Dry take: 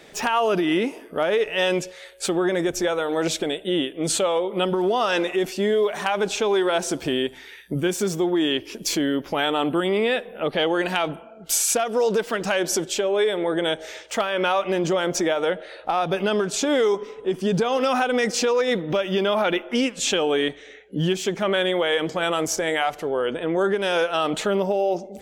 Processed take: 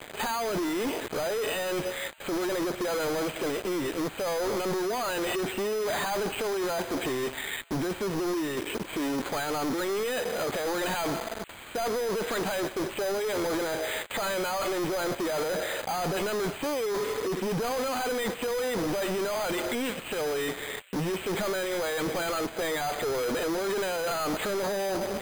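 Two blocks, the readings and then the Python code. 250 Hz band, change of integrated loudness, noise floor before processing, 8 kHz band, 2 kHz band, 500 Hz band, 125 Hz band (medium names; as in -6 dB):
-7.0 dB, -7.0 dB, -44 dBFS, -8.5 dB, -6.0 dB, -7.0 dB, -7.0 dB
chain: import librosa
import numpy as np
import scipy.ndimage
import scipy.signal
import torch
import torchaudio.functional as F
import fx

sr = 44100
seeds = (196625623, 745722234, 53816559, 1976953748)

p1 = fx.highpass(x, sr, hz=370.0, slope=6)
p2 = fx.over_compress(p1, sr, threshold_db=-29.0, ratio=-1.0)
p3 = fx.quant_companded(p2, sr, bits=2)
p4 = p3 + fx.echo_wet_highpass(p3, sr, ms=922, feedback_pct=72, hz=3800.0, wet_db=-9.5, dry=0)
p5 = np.repeat(scipy.signal.resample_poly(p4, 1, 8), 8)[:len(p4)]
y = p5 * librosa.db_to_amplitude(-2.5)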